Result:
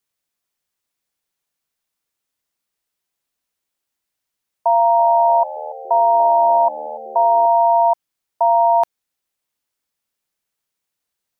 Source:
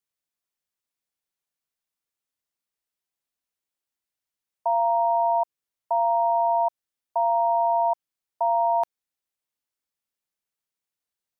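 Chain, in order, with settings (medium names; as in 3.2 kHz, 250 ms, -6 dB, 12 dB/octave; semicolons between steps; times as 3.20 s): short-mantissa float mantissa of 8-bit; 4.70–7.46 s: frequency-shifting echo 287 ms, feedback 62%, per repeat -77 Hz, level -16.5 dB; trim +8 dB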